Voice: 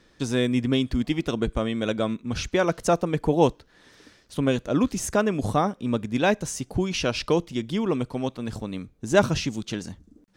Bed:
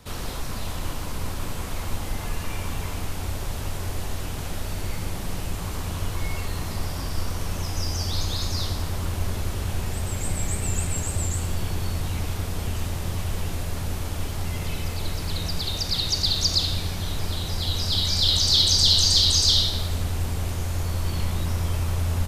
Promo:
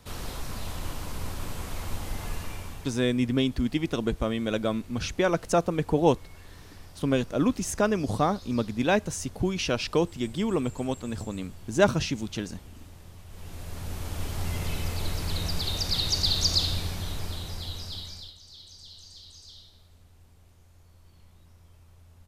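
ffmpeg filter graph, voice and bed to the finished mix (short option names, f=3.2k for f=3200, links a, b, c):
-filter_complex "[0:a]adelay=2650,volume=-2dB[a];[1:a]volume=13dB,afade=t=out:st=2.33:d=0.65:silence=0.177828,afade=t=in:st=13.28:d=1.2:silence=0.133352,afade=t=out:st=16.55:d=1.79:silence=0.0398107[b];[a][b]amix=inputs=2:normalize=0"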